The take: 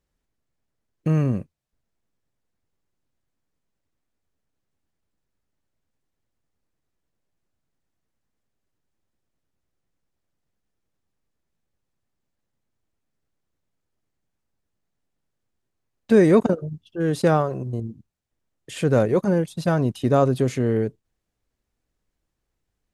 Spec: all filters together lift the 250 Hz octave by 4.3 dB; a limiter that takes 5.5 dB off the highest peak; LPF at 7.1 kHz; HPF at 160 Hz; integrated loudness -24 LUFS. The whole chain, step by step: high-pass 160 Hz; low-pass 7.1 kHz; peaking EQ 250 Hz +7 dB; trim -3.5 dB; peak limiter -11.5 dBFS

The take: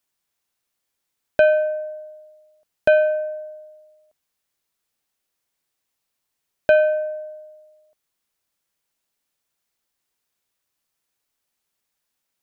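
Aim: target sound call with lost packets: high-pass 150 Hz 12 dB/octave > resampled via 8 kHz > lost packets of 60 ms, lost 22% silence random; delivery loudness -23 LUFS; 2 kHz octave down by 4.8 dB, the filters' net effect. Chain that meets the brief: high-pass 150 Hz 12 dB/octave; peaking EQ 2 kHz -7.5 dB; resampled via 8 kHz; lost packets of 60 ms, lost 22% silence random; trim -1 dB

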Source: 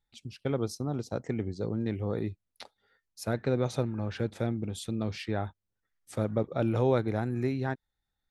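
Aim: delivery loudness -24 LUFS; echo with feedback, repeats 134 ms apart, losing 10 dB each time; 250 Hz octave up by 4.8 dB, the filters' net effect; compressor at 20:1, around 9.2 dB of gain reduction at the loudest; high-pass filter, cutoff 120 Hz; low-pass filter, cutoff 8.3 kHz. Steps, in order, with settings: high-pass 120 Hz; low-pass 8.3 kHz; peaking EQ 250 Hz +6 dB; compression 20:1, threshold -28 dBFS; feedback delay 134 ms, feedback 32%, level -10 dB; trim +11 dB

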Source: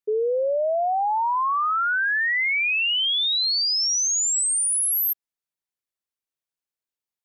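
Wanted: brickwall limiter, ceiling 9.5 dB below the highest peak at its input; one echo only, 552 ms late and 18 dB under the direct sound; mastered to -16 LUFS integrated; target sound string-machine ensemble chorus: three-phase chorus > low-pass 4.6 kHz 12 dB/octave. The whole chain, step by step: peak limiter -29 dBFS; delay 552 ms -18 dB; three-phase chorus; low-pass 4.6 kHz 12 dB/octave; trim +19 dB

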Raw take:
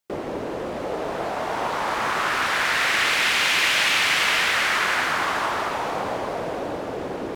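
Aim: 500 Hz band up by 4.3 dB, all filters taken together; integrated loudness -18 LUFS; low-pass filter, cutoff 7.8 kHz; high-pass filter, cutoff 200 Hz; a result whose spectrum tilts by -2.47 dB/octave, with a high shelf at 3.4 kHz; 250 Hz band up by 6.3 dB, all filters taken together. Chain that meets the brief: high-pass 200 Hz; low-pass 7.8 kHz; peaking EQ 250 Hz +8.5 dB; peaking EQ 500 Hz +3.5 dB; treble shelf 3.4 kHz -3.5 dB; trim +4 dB

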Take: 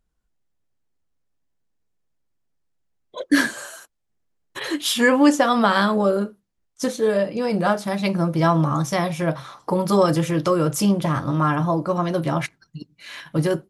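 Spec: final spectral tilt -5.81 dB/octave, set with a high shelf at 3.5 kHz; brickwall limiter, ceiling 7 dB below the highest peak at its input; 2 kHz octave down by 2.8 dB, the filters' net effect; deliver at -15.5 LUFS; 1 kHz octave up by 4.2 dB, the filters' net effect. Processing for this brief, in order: peaking EQ 1 kHz +7 dB; peaking EQ 2 kHz -5.5 dB; treble shelf 3.5 kHz -4.5 dB; trim +5.5 dB; peak limiter -3.5 dBFS

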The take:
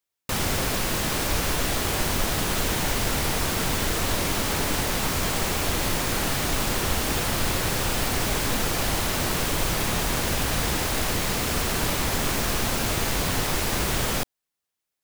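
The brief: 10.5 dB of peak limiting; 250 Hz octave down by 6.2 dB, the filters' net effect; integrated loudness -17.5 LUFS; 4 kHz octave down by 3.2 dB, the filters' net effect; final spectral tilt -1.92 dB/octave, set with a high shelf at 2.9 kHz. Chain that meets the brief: peaking EQ 250 Hz -9 dB; treble shelf 2.9 kHz +5.5 dB; peaking EQ 4 kHz -9 dB; trim +11.5 dB; peak limiter -9.5 dBFS

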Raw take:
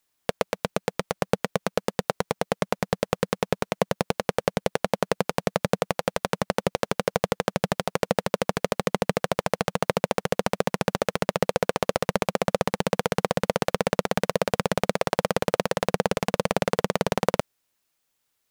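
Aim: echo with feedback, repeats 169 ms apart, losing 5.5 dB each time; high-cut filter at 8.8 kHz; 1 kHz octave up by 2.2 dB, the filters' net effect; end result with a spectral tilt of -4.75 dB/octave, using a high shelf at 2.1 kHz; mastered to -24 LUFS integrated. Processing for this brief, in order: low-pass 8.8 kHz; peaking EQ 1 kHz +4 dB; treble shelf 2.1 kHz -5.5 dB; feedback delay 169 ms, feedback 53%, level -5.5 dB; trim +1 dB

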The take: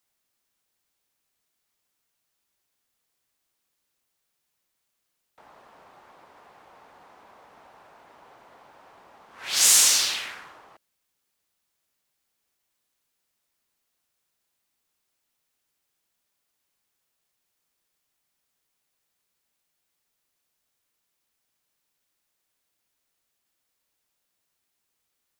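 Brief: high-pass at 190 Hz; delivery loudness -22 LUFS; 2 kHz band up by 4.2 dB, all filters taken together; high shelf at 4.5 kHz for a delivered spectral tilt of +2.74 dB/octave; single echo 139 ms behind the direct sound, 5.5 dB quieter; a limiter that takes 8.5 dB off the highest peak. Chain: high-pass 190 Hz; peaking EQ 2 kHz +4 dB; treble shelf 4.5 kHz +5.5 dB; peak limiter -9 dBFS; delay 139 ms -5.5 dB; trim -4 dB

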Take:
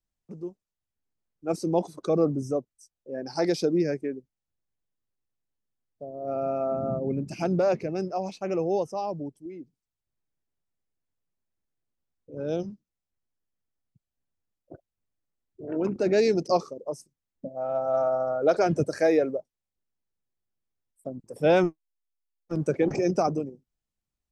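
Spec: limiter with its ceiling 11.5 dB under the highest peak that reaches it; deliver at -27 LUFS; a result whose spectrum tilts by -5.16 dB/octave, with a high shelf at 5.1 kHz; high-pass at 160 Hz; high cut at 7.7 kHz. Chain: high-pass 160 Hz; low-pass 7.7 kHz; treble shelf 5.1 kHz -8.5 dB; trim +5.5 dB; peak limiter -16.5 dBFS

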